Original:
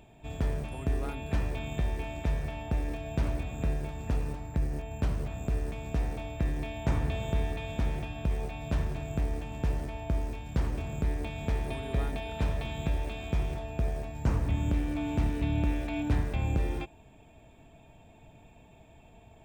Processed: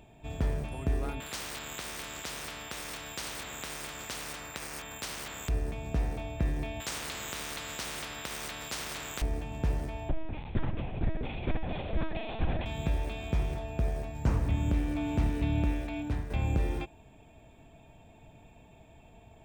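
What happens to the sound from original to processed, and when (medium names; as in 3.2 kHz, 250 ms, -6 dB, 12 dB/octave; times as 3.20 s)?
1.20–5.49 s: spectrum-flattening compressor 10:1
6.80–9.22 s: spectrum-flattening compressor 10:1
10.09–12.66 s: LPC vocoder at 8 kHz pitch kept
15.58–16.30 s: fade out, to -8 dB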